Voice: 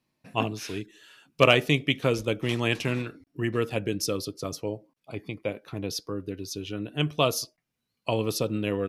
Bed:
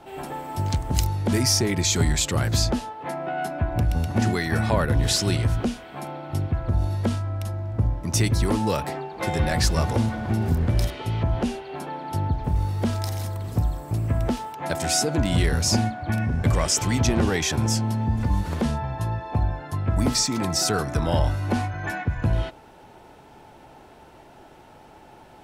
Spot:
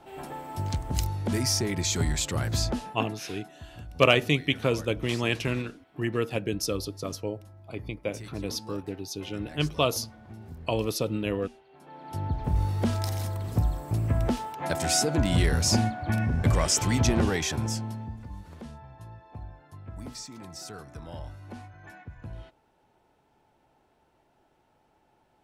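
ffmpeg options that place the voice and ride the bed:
ffmpeg -i stem1.wav -i stem2.wav -filter_complex "[0:a]adelay=2600,volume=-1dB[link_01];[1:a]volume=13.5dB,afade=type=out:start_time=2.82:duration=0.37:silence=0.16788,afade=type=in:start_time=11.8:duration=0.78:silence=0.112202,afade=type=out:start_time=17.11:duration=1.1:silence=0.149624[link_02];[link_01][link_02]amix=inputs=2:normalize=0" out.wav

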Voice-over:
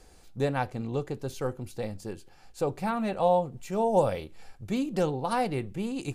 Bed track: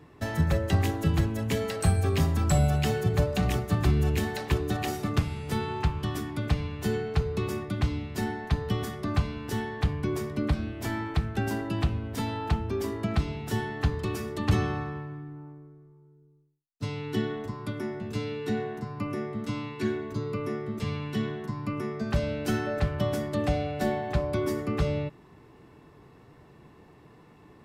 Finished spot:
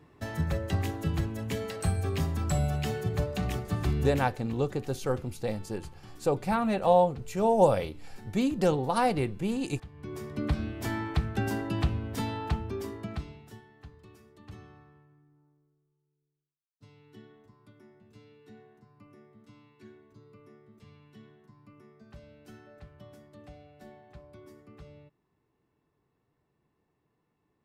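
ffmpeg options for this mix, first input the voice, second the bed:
ffmpeg -i stem1.wav -i stem2.wav -filter_complex "[0:a]adelay=3650,volume=2dB[link_01];[1:a]volume=14.5dB,afade=type=out:start_time=4.06:duration=0.33:silence=0.16788,afade=type=in:start_time=9.92:duration=0.69:silence=0.105925,afade=type=out:start_time=12.16:duration=1.45:silence=0.0794328[link_02];[link_01][link_02]amix=inputs=2:normalize=0" out.wav

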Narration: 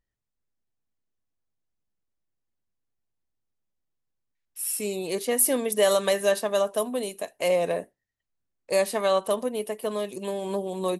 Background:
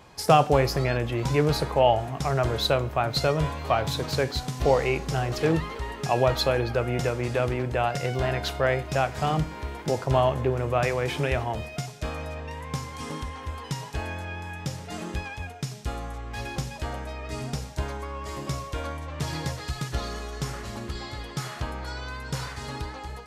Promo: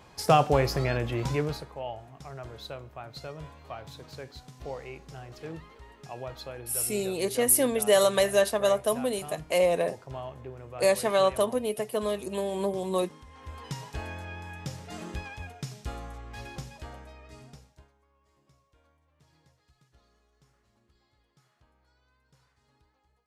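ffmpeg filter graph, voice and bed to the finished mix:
ffmpeg -i stem1.wav -i stem2.wav -filter_complex "[0:a]adelay=2100,volume=0dB[link_01];[1:a]volume=9.5dB,afade=type=out:start_time=1.21:duration=0.45:silence=0.188365,afade=type=in:start_time=13.26:duration=0.4:silence=0.251189,afade=type=out:start_time=15.87:duration=2.04:silence=0.0354813[link_02];[link_01][link_02]amix=inputs=2:normalize=0" out.wav

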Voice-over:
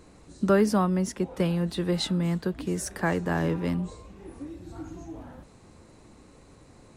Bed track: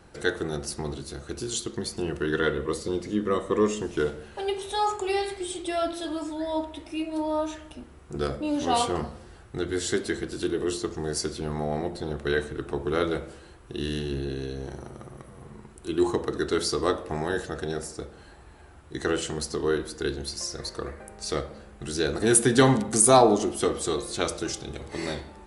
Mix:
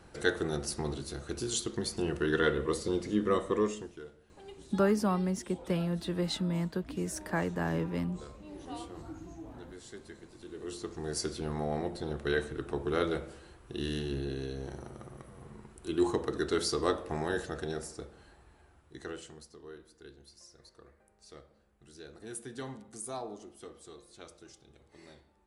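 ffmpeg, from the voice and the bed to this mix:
ffmpeg -i stem1.wav -i stem2.wav -filter_complex "[0:a]adelay=4300,volume=-5.5dB[link_01];[1:a]volume=14dB,afade=type=out:start_time=3.35:duration=0.65:silence=0.11885,afade=type=in:start_time=10.45:duration=0.83:silence=0.149624,afade=type=out:start_time=17.45:duration=2.05:silence=0.11885[link_02];[link_01][link_02]amix=inputs=2:normalize=0" out.wav

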